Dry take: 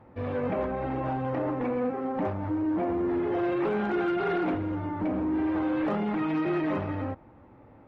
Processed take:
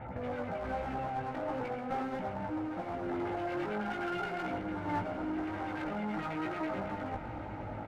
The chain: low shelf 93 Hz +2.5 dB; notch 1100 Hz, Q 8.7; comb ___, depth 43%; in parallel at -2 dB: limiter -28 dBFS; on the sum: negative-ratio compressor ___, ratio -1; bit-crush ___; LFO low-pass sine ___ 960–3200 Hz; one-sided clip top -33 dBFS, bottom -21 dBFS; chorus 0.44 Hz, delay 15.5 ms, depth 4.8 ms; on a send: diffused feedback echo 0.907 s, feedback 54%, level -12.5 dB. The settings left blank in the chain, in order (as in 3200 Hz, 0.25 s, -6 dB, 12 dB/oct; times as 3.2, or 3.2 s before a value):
1.4 ms, -33 dBFS, 12-bit, 9.2 Hz